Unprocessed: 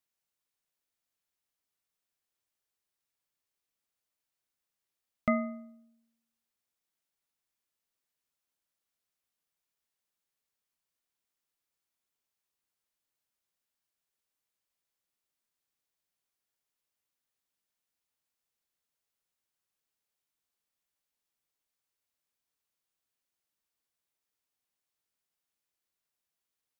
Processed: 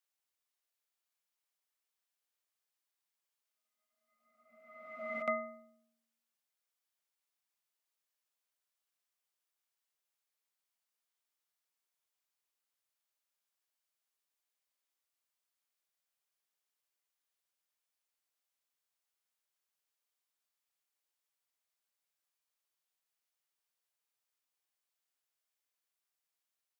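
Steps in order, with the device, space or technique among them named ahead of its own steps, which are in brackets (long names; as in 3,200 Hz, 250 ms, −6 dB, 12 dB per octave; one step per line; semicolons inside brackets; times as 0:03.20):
ghost voice (reversed playback; convolution reverb RT60 1.5 s, pre-delay 55 ms, DRR 2 dB; reversed playback; high-pass filter 510 Hz 12 dB per octave)
level −3.5 dB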